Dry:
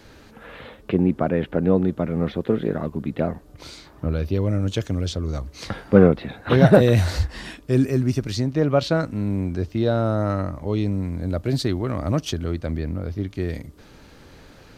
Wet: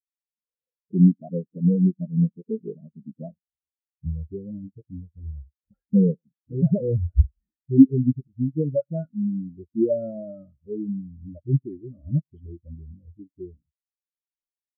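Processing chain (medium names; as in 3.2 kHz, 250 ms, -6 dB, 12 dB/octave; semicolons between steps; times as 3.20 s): delay that grows with frequency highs late, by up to 229 ms; peaking EQ 2.3 kHz -13.5 dB 0.25 oct; in parallel at -0.5 dB: compression, threshold -28 dBFS, peak gain reduction 18.5 dB; on the sum: sample-and-hold 7×; on a send: delay 106 ms -22 dB; on the sum: loudness maximiser +10 dB; spectral contrast expander 4:1; trim -1 dB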